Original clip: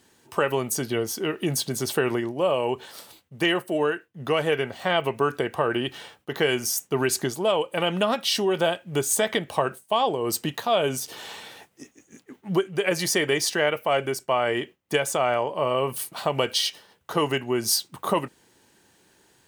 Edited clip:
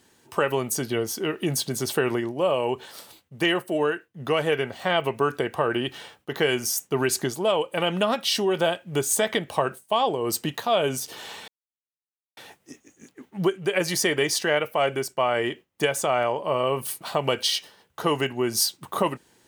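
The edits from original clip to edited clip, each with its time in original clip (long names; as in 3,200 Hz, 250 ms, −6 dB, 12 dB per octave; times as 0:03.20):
0:11.48: splice in silence 0.89 s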